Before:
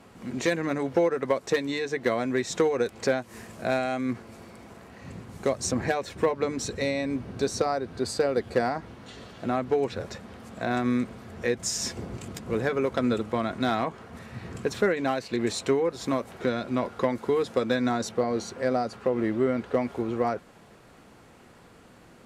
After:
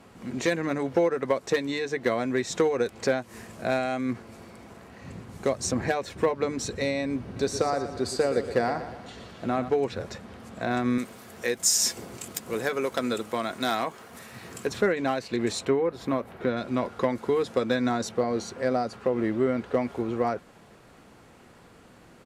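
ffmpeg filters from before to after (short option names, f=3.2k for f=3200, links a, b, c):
-filter_complex "[0:a]asplit=3[a][b][c];[a]afade=t=out:st=7.35:d=0.02[d];[b]aecho=1:1:119|238|357|476|595:0.282|0.144|0.0733|0.0374|0.0191,afade=t=in:st=7.35:d=0.02,afade=t=out:st=9.68:d=0.02[e];[c]afade=t=in:st=9.68:d=0.02[f];[d][e][f]amix=inputs=3:normalize=0,asettb=1/sr,asplit=3[g][h][i];[g]atrim=end=10.984[j];[h]atrim=start=10.98:end=14.67,asetpts=PTS-STARTPTS,afade=t=in:d=0.004:c=qsin,afade=t=out:st=3.686:d=0.004:c=qsin,aemphasis=mode=production:type=bsi[k];[i]atrim=start=14.666[l];[j][k]acrossfade=d=0.004:c1=hsin:c2=qsin[m];[m][l]acrossfade=d=0.004:c1=qsin:c2=hsin,asettb=1/sr,asplit=3[n][o][p];[n]atrim=end=15.654[q];[o]atrim=start=15.65:end=16.57,asetpts=PTS-STARTPTS,afade=t=in:d=0.004:c=qsin,afade=t=out:st=0.916:d=0.004:c=qsin,equalizer=f=6.9k:t=o:w=1.5:g=-11.5[r];[p]atrim=start=16.566[s];[q][r]acrossfade=d=0.004:c1=hsin:c2=qsin[t];[t][s]acrossfade=d=0.004:c1=qsin:c2=hsin"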